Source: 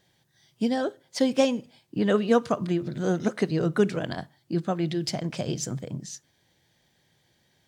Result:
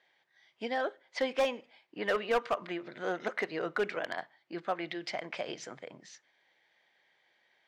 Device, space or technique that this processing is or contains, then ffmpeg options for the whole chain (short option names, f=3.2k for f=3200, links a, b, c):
megaphone: -af "highpass=630,lowpass=2.8k,equalizer=f=2.1k:t=o:w=0.4:g=6.5,asoftclip=type=hard:threshold=-22.5dB"